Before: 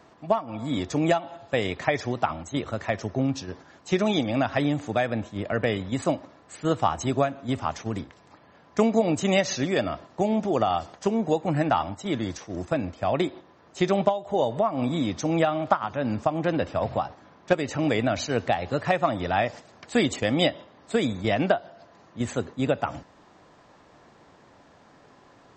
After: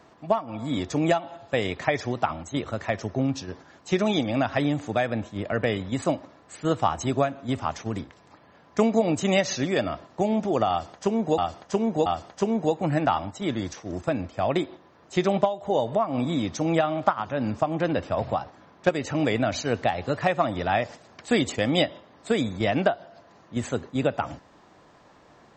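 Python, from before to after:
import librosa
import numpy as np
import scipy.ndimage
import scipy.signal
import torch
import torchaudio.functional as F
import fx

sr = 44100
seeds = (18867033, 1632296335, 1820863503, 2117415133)

y = fx.edit(x, sr, fx.repeat(start_s=10.7, length_s=0.68, count=3), tone=tone)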